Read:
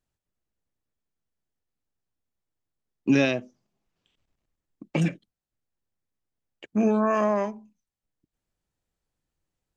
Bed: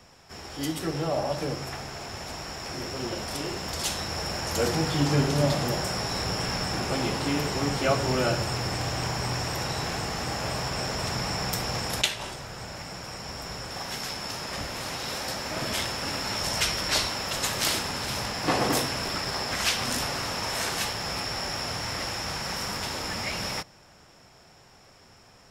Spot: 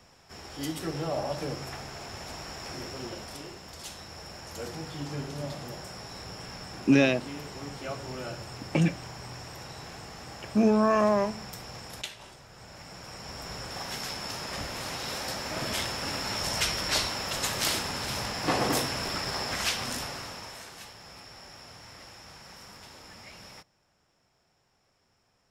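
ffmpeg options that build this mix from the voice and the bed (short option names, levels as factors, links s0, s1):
-filter_complex "[0:a]adelay=3800,volume=1[s0];[1:a]volume=2.24,afade=t=out:st=2.69:d=0.91:silence=0.354813,afade=t=in:st=12.48:d=1.13:silence=0.298538,afade=t=out:st=19.47:d=1.18:silence=0.188365[s1];[s0][s1]amix=inputs=2:normalize=0"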